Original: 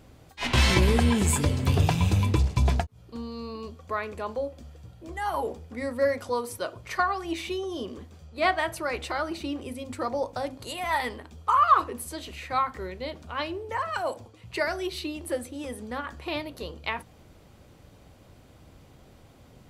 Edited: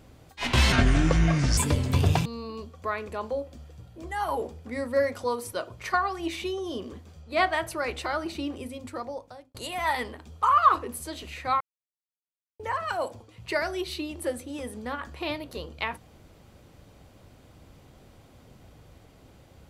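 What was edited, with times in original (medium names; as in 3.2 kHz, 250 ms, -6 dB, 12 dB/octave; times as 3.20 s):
0.72–1.31 s: speed 69%
1.99–3.31 s: delete
9.61–10.60 s: fade out
12.66–13.65 s: mute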